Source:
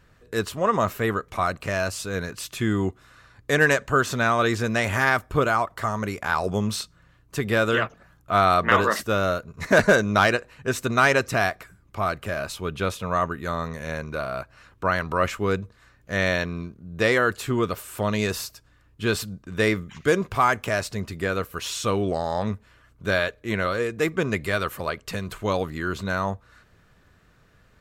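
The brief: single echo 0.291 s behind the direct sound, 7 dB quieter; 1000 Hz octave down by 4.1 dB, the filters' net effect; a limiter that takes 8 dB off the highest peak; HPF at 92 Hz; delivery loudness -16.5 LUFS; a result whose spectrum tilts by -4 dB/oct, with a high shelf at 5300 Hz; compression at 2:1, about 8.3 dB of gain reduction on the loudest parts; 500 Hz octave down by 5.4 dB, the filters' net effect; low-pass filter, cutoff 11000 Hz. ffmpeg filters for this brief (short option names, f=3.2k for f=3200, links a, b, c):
-af "highpass=92,lowpass=11k,equalizer=f=500:t=o:g=-5.5,equalizer=f=1k:t=o:g=-4.5,highshelf=f=5.3k:g=5,acompressor=threshold=-31dB:ratio=2,alimiter=limit=-21dB:level=0:latency=1,aecho=1:1:291:0.447,volume=17dB"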